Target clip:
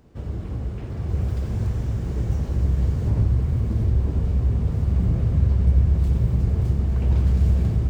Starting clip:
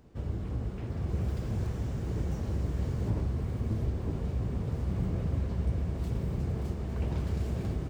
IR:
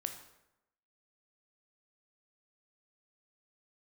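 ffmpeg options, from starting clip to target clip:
-filter_complex "[0:a]asplit=2[a][b];[b]asubboost=boost=9.5:cutoff=180[c];[1:a]atrim=start_sample=2205,adelay=90[d];[c][d]afir=irnorm=-1:irlink=0,volume=-9.5dB[e];[a][e]amix=inputs=2:normalize=0,volume=3.5dB"

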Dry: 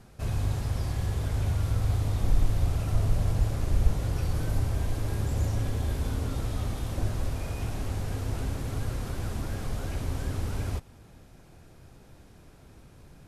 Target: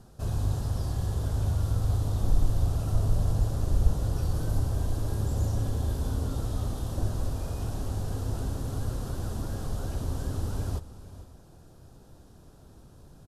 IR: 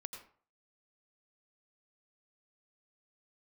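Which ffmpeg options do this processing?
-filter_complex "[0:a]equalizer=f=2.2k:t=o:w=0.65:g=-14.5,asplit=2[a][b];[b]asetrate=42336,aresample=44100[c];[1:a]atrim=start_sample=2205[d];[c][d]afir=irnorm=-1:irlink=0,volume=-12dB[e];[a][e]amix=inputs=2:normalize=0"

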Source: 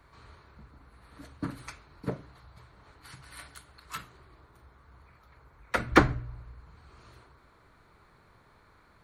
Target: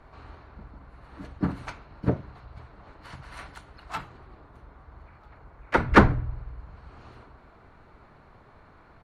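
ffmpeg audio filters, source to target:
-filter_complex "[0:a]aemphasis=mode=reproduction:type=75fm,asplit=3[a][b][c];[b]asetrate=29433,aresample=44100,atempo=1.49831,volume=-2dB[d];[c]asetrate=52444,aresample=44100,atempo=0.840896,volume=-15dB[e];[a][d][e]amix=inputs=3:normalize=0,asplit=2[f][g];[g]aeval=exprs='0.224*(abs(mod(val(0)/0.224+3,4)-2)-1)':c=same,volume=-9dB[h];[f][h]amix=inputs=2:normalize=0,volume=2dB"

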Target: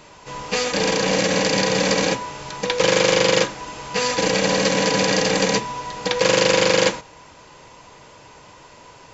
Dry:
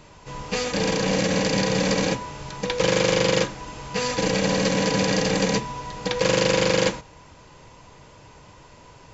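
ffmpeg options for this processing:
-af "lowshelf=f=190:g=-11.5,volume=5dB"

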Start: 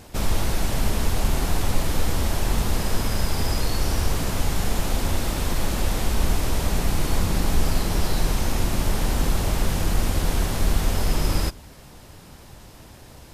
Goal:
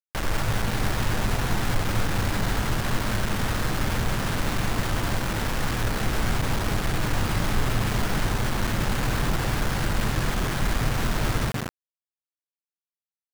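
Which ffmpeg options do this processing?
-filter_complex "[0:a]lowpass=f=1.6k:t=q:w=2.4,asplit=6[a][b][c][d][e][f];[b]adelay=180,afreqshift=97,volume=-6dB[g];[c]adelay=360,afreqshift=194,volume=-14dB[h];[d]adelay=540,afreqshift=291,volume=-21.9dB[i];[e]adelay=720,afreqshift=388,volume=-29.9dB[j];[f]adelay=900,afreqshift=485,volume=-37.8dB[k];[a][g][h][i][j][k]amix=inputs=6:normalize=0,acrusher=bits=3:mix=0:aa=0.000001,volume=-5.5dB"

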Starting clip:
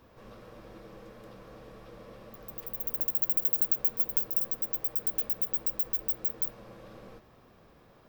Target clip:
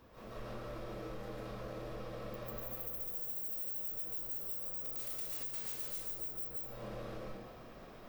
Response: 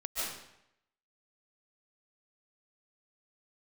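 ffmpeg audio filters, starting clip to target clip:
-filter_complex "[0:a]asettb=1/sr,asplit=3[a][b][c];[a]atrim=end=4.784[d];[b]atrim=start=4.78:end=5.99,asetpts=PTS-STARTPTS,afade=t=in:d=0.004:c=qsin,afade=t=out:st=1.206:d=0.004:c=qsin,aeval=exprs='(mod(5.31*val(0)+1,2)-1)/5.31':c=same[e];[c]atrim=start=5.986[f];[d][e]acrossfade=d=0.004:c1=hsin:c2=qsin[g];[g][f]acrossfade=d=0.004:c1=qsin:c2=hsin[h];[1:a]atrim=start_sample=2205[i];[h][i]afir=irnorm=-1:irlink=0,asoftclip=type=tanh:threshold=-23dB,acompressor=threshold=-41dB:ratio=6,volume=1.5dB"

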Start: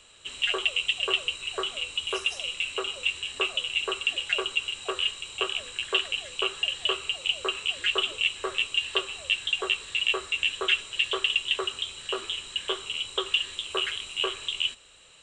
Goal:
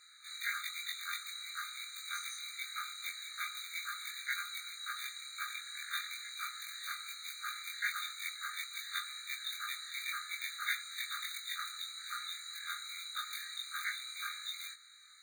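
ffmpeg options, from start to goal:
-af "afftfilt=real='re':imag='-im':win_size=2048:overlap=0.75,acrusher=bits=4:mode=log:mix=0:aa=0.000001,afftfilt=real='re*eq(mod(floor(b*sr/1024/1200),2),1)':imag='im*eq(mod(floor(b*sr/1024/1200),2),1)':win_size=1024:overlap=0.75,volume=4dB"

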